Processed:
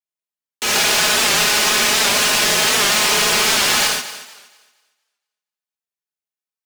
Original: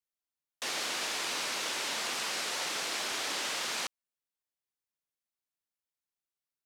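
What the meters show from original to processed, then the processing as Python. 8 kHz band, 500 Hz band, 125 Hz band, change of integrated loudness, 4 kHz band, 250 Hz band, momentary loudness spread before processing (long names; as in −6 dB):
+19.5 dB, +19.0 dB, +25.5 dB, +19.0 dB, +18.5 dB, +19.5 dB, 3 LU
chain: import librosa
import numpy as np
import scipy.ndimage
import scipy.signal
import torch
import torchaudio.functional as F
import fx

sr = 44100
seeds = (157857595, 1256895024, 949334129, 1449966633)

p1 = fx.cycle_switch(x, sr, every=2, mode='inverted')
p2 = scipy.signal.sosfilt(scipy.signal.butter(4, 120.0, 'highpass', fs=sr, output='sos'), p1)
p3 = p2 + 0.86 * np.pad(p2, (int(4.8 * sr / 1000.0), 0))[:len(p2)]
p4 = fx.leveller(p3, sr, passes=5)
p5 = p4 + fx.echo_thinned(p4, sr, ms=233, feedback_pct=30, hz=200.0, wet_db=-14.0, dry=0)
p6 = fx.rev_gated(p5, sr, seeds[0], gate_ms=160, shape='flat', drr_db=-5.0)
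y = fx.record_warp(p6, sr, rpm=78.0, depth_cents=100.0)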